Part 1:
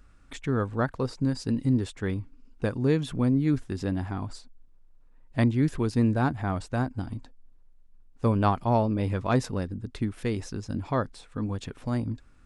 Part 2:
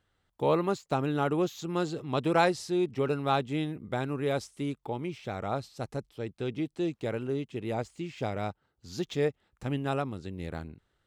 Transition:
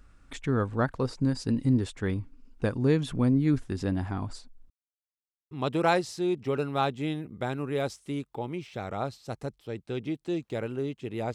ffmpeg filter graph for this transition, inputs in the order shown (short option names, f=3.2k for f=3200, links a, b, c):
-filter_complex "[0:a]apad=whole_dur=11.34,atrim=end=11.34,asplit=2[a][b];[a]atrim=end=4.7,asetpts=PTS-STARTPTS,afade=t=out:st=4.696:d=0.004:c=hsin[c];[b]atrim=start=4.7:end=5.51,asetpts=PTS-STARTPTS,volume=0[d];[1:a]atrim=start=2.02:end=7.85,asetpts=PTS-STARTPTS,afade=t=in:d=0.004:c=hsin[e];[c][d][e]concat=n=3:v=0:a=1"